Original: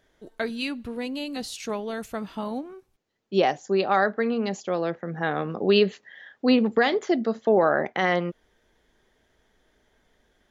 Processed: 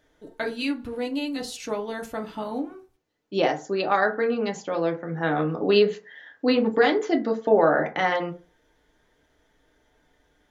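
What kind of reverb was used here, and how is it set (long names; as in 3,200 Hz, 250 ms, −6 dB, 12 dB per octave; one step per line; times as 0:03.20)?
feedback delay network reverb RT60 0.34 s, low-frequency decay 0.9×, high-frequency decay 0.45×, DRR 2.5 dB
level −1 dB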